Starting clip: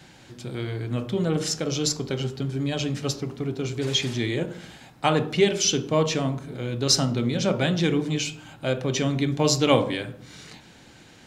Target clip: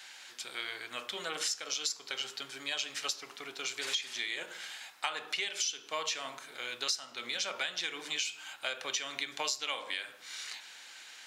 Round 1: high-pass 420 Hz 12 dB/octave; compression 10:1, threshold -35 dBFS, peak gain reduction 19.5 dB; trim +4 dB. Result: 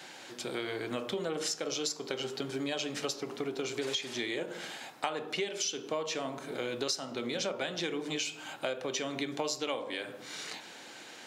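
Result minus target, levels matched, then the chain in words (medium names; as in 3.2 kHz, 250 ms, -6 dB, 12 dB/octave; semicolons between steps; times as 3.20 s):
500 Hz band +10.5 dB
high-pass 1.4 kHz 12 dB/octave; compression 10:1, threshold -35 dBFS, peak gain reduction 19.5 dB; trim +4 dB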